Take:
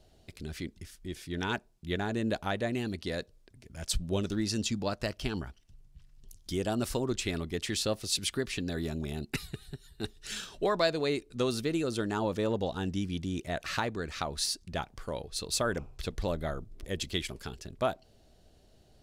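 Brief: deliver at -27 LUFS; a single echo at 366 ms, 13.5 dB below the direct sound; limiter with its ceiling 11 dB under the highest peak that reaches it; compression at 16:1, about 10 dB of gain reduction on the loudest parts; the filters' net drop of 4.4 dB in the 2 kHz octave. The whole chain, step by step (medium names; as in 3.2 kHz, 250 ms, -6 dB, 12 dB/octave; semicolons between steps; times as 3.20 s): peaking EQ 2 kHz -6 dB; compression 16:1, threshold -32 dBFS; peak limiter -32 dBFS; delay 366 ms -13.5 dB; trim +15.5 dB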